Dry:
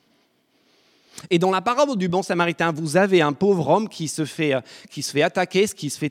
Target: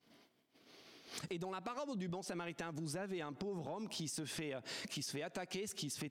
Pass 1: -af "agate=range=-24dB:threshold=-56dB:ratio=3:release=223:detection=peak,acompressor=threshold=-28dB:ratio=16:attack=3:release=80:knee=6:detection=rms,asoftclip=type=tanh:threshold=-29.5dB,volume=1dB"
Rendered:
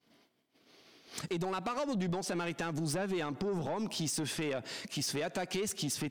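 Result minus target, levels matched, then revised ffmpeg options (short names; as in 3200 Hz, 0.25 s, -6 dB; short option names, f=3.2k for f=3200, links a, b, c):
compressor: peak gain reduction -11 dB
-af "agate=range=-24dB:threshold=-56dB:ratio=3:release=223:detection=peak,acompressor=threshold=-39.5dB:ratio=16:attack=3:release=80:knee=6:detection=rms,asoftclip=type=tanh:threshold=-29.5dB,volume=1dB"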